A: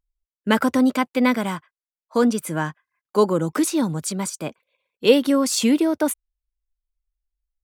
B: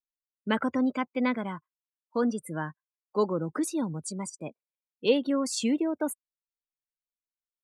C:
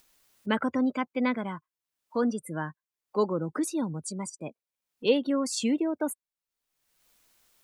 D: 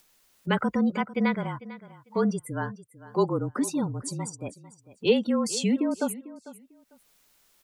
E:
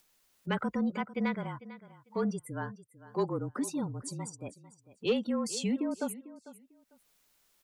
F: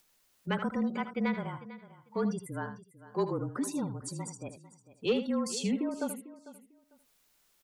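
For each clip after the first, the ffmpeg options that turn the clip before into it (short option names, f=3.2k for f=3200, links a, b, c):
-af "afftdn=nr=28:nf=-32,volume=-8.5dB"
-af "acompressor=mode=upward:threshold=-41dB:ratio=2.5"
-af "afreqshift=-33,aecho=1:1:448|896:0.141|0.0283,volume=2dB"
-af "asoftclip=type=tanh:threshold=-12dB,volume=-6dB"
-af "aecho=1:1:78:0.282"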